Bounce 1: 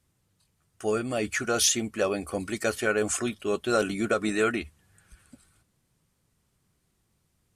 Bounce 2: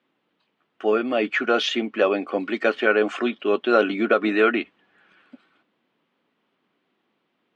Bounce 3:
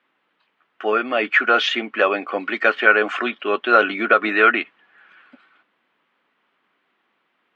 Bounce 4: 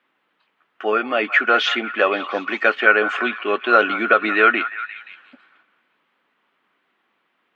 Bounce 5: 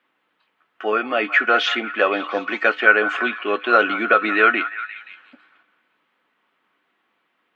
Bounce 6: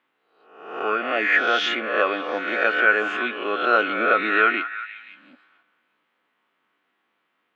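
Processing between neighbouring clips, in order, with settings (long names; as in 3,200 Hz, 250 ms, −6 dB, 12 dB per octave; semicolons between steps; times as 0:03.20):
Chebyshev band-pass filter 250–3,200 Hz, order 3; level +7.5 dB
parametric band 1,600 Hz +14.5 dB 2.8 octaves; level −6 dB
echo through a band-pass that steps 176 ms, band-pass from 1,100 Hz, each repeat 0.7 octaves, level −10 dB
tuned comb filter 100 Hz, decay 0.22 s, harmonics odd, mix 50%; level +4 dB
peak hold with a rise ahead of every peak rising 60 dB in 0.78 s; level −5.5 dB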